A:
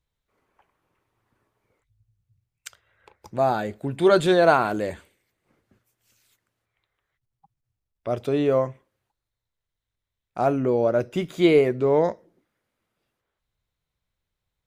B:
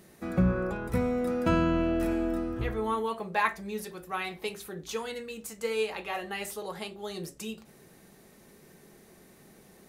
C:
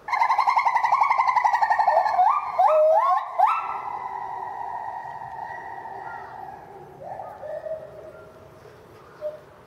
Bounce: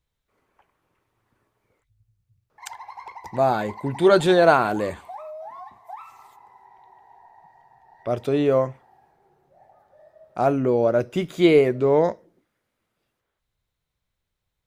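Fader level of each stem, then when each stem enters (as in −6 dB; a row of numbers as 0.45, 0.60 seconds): +1.5 dB, muted, −19.5 dB; 0.00 s, muted, 2.50 s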